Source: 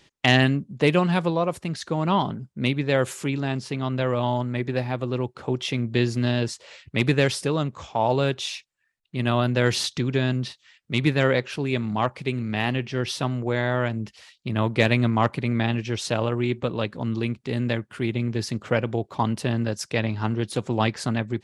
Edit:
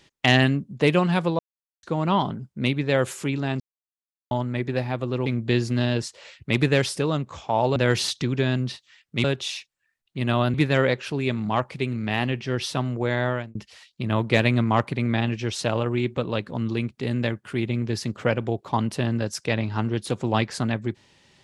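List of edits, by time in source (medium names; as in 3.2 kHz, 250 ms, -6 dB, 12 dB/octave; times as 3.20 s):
1.39–1.83 s: mute
3.60–4.31 s: mute
5.26–5.72 s: delete
8.22–9.52 s: move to 11.00 s
13.73–14.01 s: fade out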